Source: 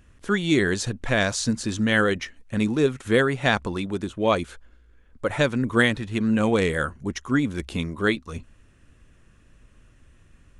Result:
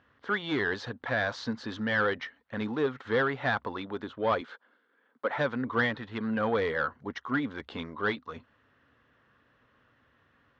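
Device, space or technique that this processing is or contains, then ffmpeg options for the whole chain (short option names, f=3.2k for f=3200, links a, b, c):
overdrive pedal into a guitar cabinet: -filter_complex "[0:a]asplit=2[a][b];[b]highpass=f=720:p=1,volume=19dB,asoftclip=type=tanh:threshold=-4dB[c];[a][c]amix=inputs=2:normalize=0,lowpass=f=1.4k:p=1,volume=-6dB,highpass=110,equalizer=f=180:t=q:w=4:g=-10,equalizer=f=350:t=q:w=4:g=-9,equalizer=f=620:t=q:w=4:g=-4,equalizer=f=2.5k:t=q:w=4:g=-9,lowpass=f=4.4k:w=0.5412,lowpass=f=4.4k:w=1.3066,asettb=1/sr,asplit=3[d][e][f];[d]atrim=end=4.414[g];[e]atrim=start=4.41:end=5.37,asetpts=PTS-STARTPTS,afade=t=in:d=0.004:c=qsin,afade=t=out:st=0.956:d=0.004:c=qsin,highpass=f=190:w=0.5412,highpass=f=190:w=1.3066[h];[f]atrim=start=5.366[i];[g][h]acrossfade=d=0.004:c1=hsin:c2=qsin[j];[j][i]acrossfade=d=0.004:c1=qsin:c2=hsin,volume=-8.5dB"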